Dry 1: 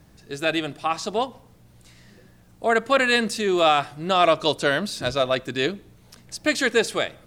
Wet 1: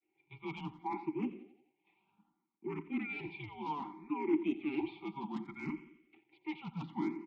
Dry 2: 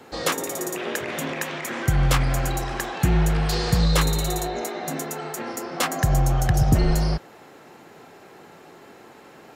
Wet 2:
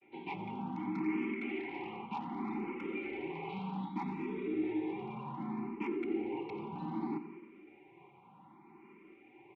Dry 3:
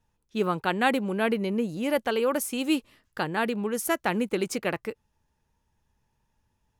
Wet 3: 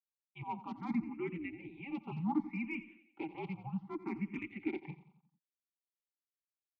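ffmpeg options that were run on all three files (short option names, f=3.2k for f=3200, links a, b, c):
-filter_complex "[0:a]agate=range=-33dB:threshold=-42dB:ratio=3:detection=peak,highpass=f=250:t=q:w=0.5412,highpass=f=250:t=q:w=1.307,lowpass=f=3.3k:t=q:w=0.5176,lowpass=f=3.3k:t=q:w=0.7071,lowpass=f=3.3k:t=q:w=1.932,afreqshift=-270,lowshelf=f=110:g=-10,aecho=1:1:5:0.82,areverse,acompressor=threshold=-30dB:ratio=8,areverse,afreqshift=-25,aeval=exprs='0.0447*(abs(mod(val(0)/0.0447+3,4)-2)-1)':c=same,adynamicequalizer=threshold=0.00316:dfrequency=210:dqfactor=0.88:tfrequency=210:tqfactor=0.88:attack=5:release=100:ratio=0.375:range=3.5:mode=boostabove:tftype=bell,asoftclip=type=tanh:threshold=-21.5dB,asplit=3[a][b][c];[a]bandpass=f=300:t=q:w=8,volume=0dB[d];[b]bandpass=f=870:t=q:w=8,volume=-6dB[e];[c]bandpass=f=2.24k:t=q:w=8,volume=-9dB[f];[d][e][f]amix=inputs=3:normalize=0,aecho=1:1:88|176|264|352|440:0.168|0.0839|0.042|0.021|0.0105,asplit=2[g][h];[h]afreqshift=0.65[i];[g][i]amix=inputs=2:normalize=1,volume=10dB"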